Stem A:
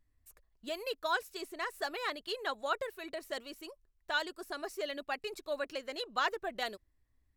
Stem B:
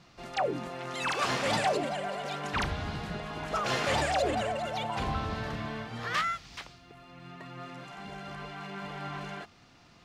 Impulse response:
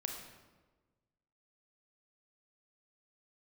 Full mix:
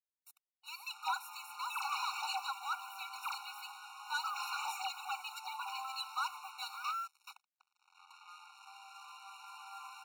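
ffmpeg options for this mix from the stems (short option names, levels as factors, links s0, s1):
-filter_complex "[0:a]bandreject=f=750:w=18,asoftclip=type=tanh:threshold=0.0211,volume=1.19,asplit=2[s0][s1];[s1]volume=0.211[s2];[1:a]bandreject=f=510:w=12,adelay=700,volume=0.447[s3];[2:a]atrim=start_sample=2205[s4];[s2][s4]afir=irnorm=-1:irlink=0[s5];[s0][s3][s5]amix=inputs=3:normalize=0,lowshelf=f=95:g=-6,acrusher=bits=7:mix=0:aa=0.5,afftfilt=real='re*eq(mod(floor(b*sr/1024/740),2),1)':imag='im*eq(mod(floor(b*sr/1024/740),2),1)':win_size=1024:overlap=0.75"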